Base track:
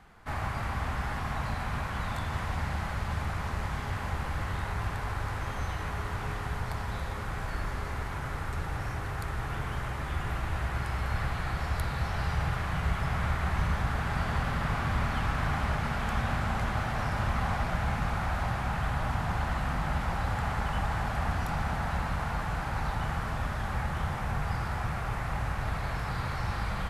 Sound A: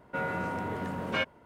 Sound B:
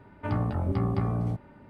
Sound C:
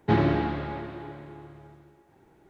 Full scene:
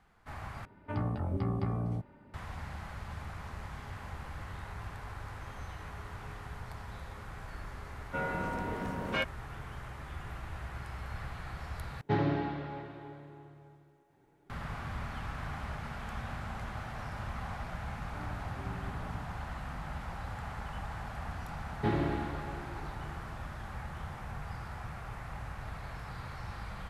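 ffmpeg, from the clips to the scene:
ffmpeg -i bed.wav -i cue0.wav -i cue1.wav -i cue2.wav -filter_complex "[2:a]asplit=2[link_01][link_02];[3:a]asplit=2[link_03][link_04];[0:a]volume=-10dB[link_05];[link_03]aecho=1:1:7:0.49[link_06];[link_05]asplit=3[link_07][link_08][link_09];[link_07]atrim=end=0.654[link_10];[link_01]atrim=end=1.69,asetpts=PTS-STARTPTS,volume=-5.5dB[link_11];[link_08]atrim=start=2.336:end=12.014[link_12];[link_06]atrim=end=2.49,asetpts=PTS-STARTPTS,volume=-8.5dB[link_13];[link_09]atrim=start=14.496[link_14];[1:a]atrim=end=1.45,asetpts=PTS-STARTPTS,volume=-2.5dB,afade=type=in:duration=0.004:curve=hsin,afade=type=out:start_time=1.446:duration=0.004:curve=hsin,adelay=8000[link_15];[link_02]atrim=end=1.69,asetpts=PTS-STARTPTS,volume=-16dB,afade=type=in:duration=0.004:curve=hsin,afade=type=out:start_time=1.686:duration=0.004:curve=hsin,adelay=17900[link_16];[link_04]atrim=end=2.49,asetpts=PTS-STARTPTS,volume=-8.5dB,afade=type=in:duration=0.004:curve=hsin,afade=type=out:start_time=2.486:duration=0.004:curve=hsin,adelay=21750[link_17];[link_10][link_11]acrossfade=duration=0.004:curve1=hsin:curve2=hsin[link_18];[link_18][link_12]acrossfade=duration=0.004:curve1=hsin:curve2=hsin[link_19];[link_19][link_13]acrossfade=duration=0.004:curve1=hsin:curve2=hsin[link_20];[link_20][link_14]acrossfade=duration=0.004:curve1=hsin:curve2=hsin[link_21];[link_21][link_15][link_16][link_17]amix=inputs=4:normalize=0" out.wav

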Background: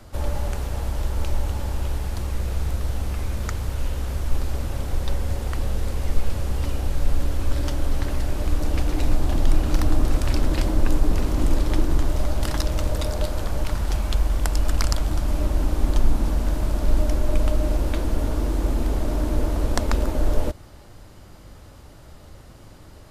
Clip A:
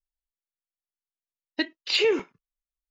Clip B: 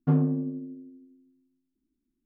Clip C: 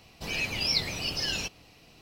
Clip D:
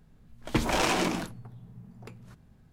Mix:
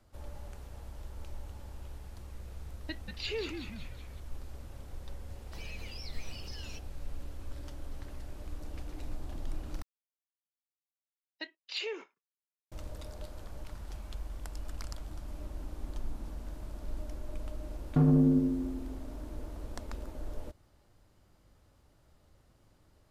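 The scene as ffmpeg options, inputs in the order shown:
ffmpeg -i bed.wav -i cue0.wav -i cue1.wav -i cue2.wav -filter_complex "[1:a]asplit=2[link_01][link_02];[0:a]volume=-19.5dB[link_03];[link_01]asplit=8[link_04][link_05][link_06][link_07][link_08][link_09][link_10][link_11];[link_05]adelay=187,afreqshift=-110,volume=-6dB[link_12];[link_06]adelay=374,afreqshift=-220,volume=-11.4dB[link_13];[link_07]adelay=561,afreqshift=-330,volume=-16.7dB[link_14];[link_08]adelay=748,afreqshift=-440,volume=-22.1dB[link_15];[link_09]adelay=935,afreqshift=-550,volume=-27.4dB[link_16];[link_10]adelay=1122,afreqshift=-660,volume=-32.8dB[link_17];[link_11]adelay=1309,afreqshift=-770,volume=-38.1dB[link_18];[link_04][link_12][link_13][link_14][link_15][link_16][link_17][link_18]amix=inputs=8:normalize=0[link_19];[3:a]acompressor=threshold=-31dB:ratio=6:attack=3.2:release=140:knee=1:detection=peak[link_20];[link_02]highpass=470[link_21];[2:a]alimiter=level_in=22.5dB:limit=-1dB:release=50:level=0:latency=1[link_22];[link_03]asplit=2[link_23][link_24];[link_23]atrim=end=9.824[link_25];[link_21]atrim=end=2.9,asetpts=PTS-STARTPTS,volume=-13dB[link_26];[link_24]atrim=start=12.716[link_27];[link_19]atrim=end=2.9,asetpts=PTS-STARTPTS,volume=-14.5dB,afade=type=in:duration=0.004:curve=hsin,afade=type=out:start_time=2.896:duration=0.004:curve=hsin,adelay=1300[link_28];[link_20]atrim=end=2.01,asetpts=PTS-STARTPTS,volume=-13dB,afade=type=in:duration=0.004:curve=hsin,afade=type=out:start_time=2.006:duration=0.004:curve=hsin,adelay=5310[link_29];[link_22]atrim=end=2.25,asetpts=PTS-STARTPTS,volume=-15.5dB,afade=type=in:duration=0.004:curve=hsin,afade=type=out:start_time=2.246:duration=0.004:curve=hsin,adelay=17890[link_30];[link_25][link_26]acrossfade=duration=0.004:curve1=hsin:curve2=hsin[link_31];[link_31][link_27]acrossfade=duration=0.004:curve1=hsin:curve2=hsin[link_32];[link_32][link_28][link_29][link_30]amix=inputs=4:normalize=0" out.wav

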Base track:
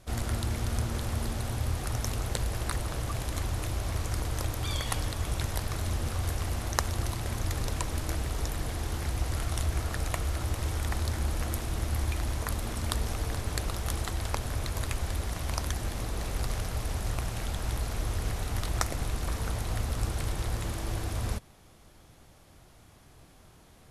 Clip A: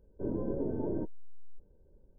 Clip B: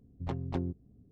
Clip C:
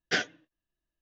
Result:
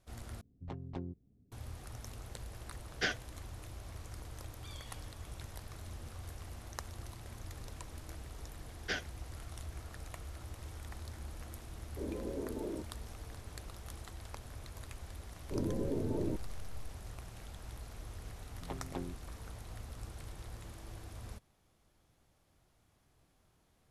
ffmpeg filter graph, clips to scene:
ffmpeg -i bed.wav -i cue0.wav -i cue1.wav -i cue2.wav -filter_complex "[2:a]asplit=2[link_01][link_02];[3:a]asplit=2[link_03][link_04];[1:a]asplit=2[link_05][link_06];[0:a]volume=-15.5dB[link_07];[link_05]highpass=220[link_08];[link_06]equalizer=frequency=100:width=1.6:gain=7.5[link_09];[link_02]highpass=frequency=310:poles=1[link_10];[link_07]asplit=2[link_11][link_12];[link_11]atrim=end=0.414[link_13];[link_01]atrim=end=1.11,asetpts=PTS-STARTPTS,volume=-8.5dB[link_14];[link_12]atrim=start=1.516[link_15];[link_03]atrim=end=1.01,asetpts=PTS-STARTPTS,volume=-6dB,afade=type=in:duration=0.004:curve=hsin,afade=type=out:start_time=1.006:duration=0.004:curve=hsin,adelay=2900[link_16];[link_04]atrim=end=1.01,asetpts=PTS-STARTPTS,volume=-9.5dB,afade=type=in:duration=0.004:curve=hsin,afade=type=out:start_time=1.006:duration=0.004:curve=hsin,adelay=8770[link_17];[link_08]atrim=end=2.18,asetpts=PTS-STARTPTS,volume=-5dB,afade=type=in:duration=0.004:curve=hsin,afade=type=out:start_time=2.176:duration=0.004:curve=hsin,adelay=11770[link_18];[link_09]atrim=end=2.18,asetpts=PTS-STARTPTS,volume=-2.5dB,afade=type=in:duration=0.004:curve=hsin,afade=type=out:start_time=2.176:duration=0.004:curve=hsin,adelay=15310[link_19];[link_10]atrim=end=1.11,asetpts=PTS-STARTPTS,volume=-3.5dB,afade=type=in:duration=0.004:curve=hsin,afade=type=out:start_time=1.106:duration=0.004:curve=hsin,adelay=18410[link_20];[link_13][link_14]acrossfade=duration=0.004:curve1=hsin:curve2=hsin[link_21];[link_21][link_15]acrossfade=duration=0.004:curve1=hsin:curve2=hsin[link_22];[link_22][link_16][link_17][link_18][link_19][link_20]amix=inputs=6:normalize=0" out.wav

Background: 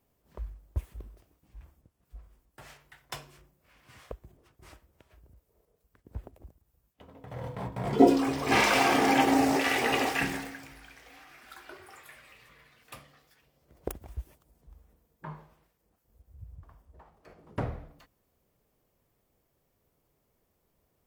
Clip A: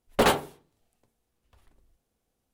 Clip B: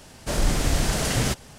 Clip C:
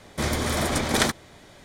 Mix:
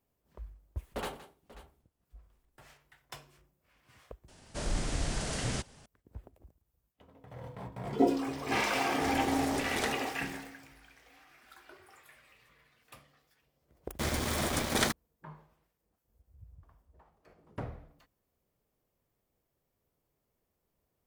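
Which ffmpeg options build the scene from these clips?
ffmpeg -i bed.wav -i cue0.wav -i cue1.wav -i cue2.wav -filter_complex "[3:a]asplit=2[link_01][link_02];[0:a]volume=-7dB[link_03];[1:a]aecho=1:1:41|168|537:0.141|0.168|0.141[link_04];[2:a]aresample=22050,aresample=44100[link_05];[link_02]aeval=exprs='val(0)*gte(abs(val(0)),0.0447)':channel_layout=same[link_06];[link_04]atrim=end=2.53,asetpts=PTS-STARTPTS,volume=-17dB,afade=type=in:duration=0.004:curve=hsin,afade=type=out:start_time=2.526:duration=0.004:curve=hsin,adelay=770[link_07];[link_05]atrim=end=1.58,asetpts=PTS-STARTPTS,volume=-10.5dB,afade=type=in:duration=0.004:curve=hsin,afade=type=out:start_time=1.576:duration=0.004:curve=hsin,adelay=4280[link_08];[link_01]atrim=end=1.64,asetpts=PTS-STARTPTS,volume=-14dB,afade=type=in:duration=0.004:curve=hsin,afade=type=out:start_time=1.636:duration=0.004:curve=hsin,adelay=388962S[link_09];[link_06]atrim=end=1.64,asetpts=PTS-STARTPTS,volume=-6.5dB,afade=type=in:duration=0.004:curve=hsin,afade=type=out:start_time=1.636:duration=0.004:curve=hsin,adelay=13810[link_10];[link_03][link_07][link_08][link_09][link_10]amix=inputs=5:normalize=0" out.wav

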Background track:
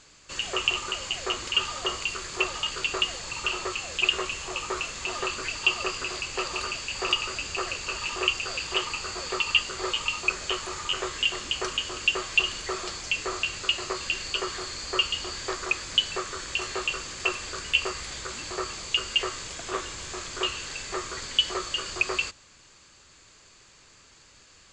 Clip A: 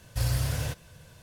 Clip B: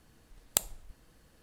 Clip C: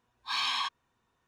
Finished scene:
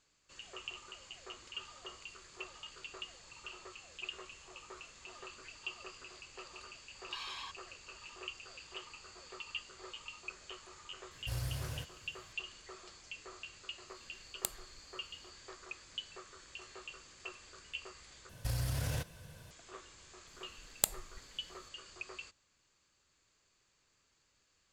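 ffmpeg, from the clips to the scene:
ffmpeg -i bed.wav -i cue0.wav -i cue1.wav -i cue2.wav -filter_complex "[1:a]asplit=2[link_01][link_02];[2:a]asplit=2[link_03][link_04];[0:a]volume=-20dB[link_05];[link_02]acompressor=threshold=-29dB:ratio=6:attack=3.2:release=140:knee=1:detection=peak[link_06];[link_05]asplit=2[link_07][link_08];[link_07]atrim=end=18.294[link_09];[link_06]atrim=end=1.22,asetpts=PTS-STARTPTS,volume=-2dB[link_10];[link_08]atrim=start=19.506[link_11];[3:a]atrim=end=1.27,asetpts=PTS-STARTPTS,volume=-14.5dB,afade=type=in:duration=0.004:curve=hsin,afade=type=out:start_time=1.266:duration=0.004:curve=hsin,adelay=6830[link_12];[link_01]atrim=end=1.22,asetpts=PTS-STARTPTS,volume=-11.5dB,afade=type=in:duration=0.004:curve=hsin,afade=type=out:start_time=1.216:duration=0.004:curve=hsin,adelay=11110[link_13];[link_03]atrim=end=1.42,asetpts=PTS-STARTPTS,volume=-9.5dB,afade=type=in:duration=0.004:curve=hsin,afade=type=out:start_time=1.416:duration=0.004:curve=hsin,adelay=13880[link_14];[link_04]atrim=end=1.42,asetpts=PTS-STARTPTS,volume=-3dB,afade=type=in:duration=0.004:curve=hsin,afade=type=out:start_time=1.416:duration=0.004:curve=hsin,adelay=20270[link_15];[link_09][link_10]acrossfade=duration=0.004:curve1=hsin:curve2=hsin[link_16];[link_16][link_11]acrossfade=duration=0.004:curve1=hsin:curve2=hsin[link_17];[link_17][link_12][link_13][link_14][link_15]amix=inputs=5:normalize=0" out.wav

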